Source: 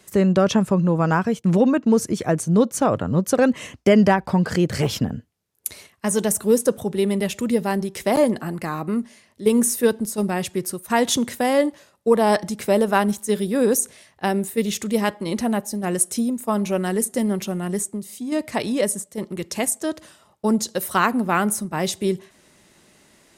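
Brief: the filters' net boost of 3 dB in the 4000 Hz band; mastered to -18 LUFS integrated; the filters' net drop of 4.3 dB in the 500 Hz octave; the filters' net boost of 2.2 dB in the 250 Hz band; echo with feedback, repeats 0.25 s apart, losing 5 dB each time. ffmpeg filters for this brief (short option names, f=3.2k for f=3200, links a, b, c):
-af "equalizer=f=250:t=o:g=4,equalizer=f=500:t=o:g=-6.5,equalizer=f=4k:t=o:g=4,aecho=1:1:250|500|750|1000|1250|1500|1750:0.562|0.315|0.176|0.0988|0.0553|0.031|0.0173,volume=1.5dB"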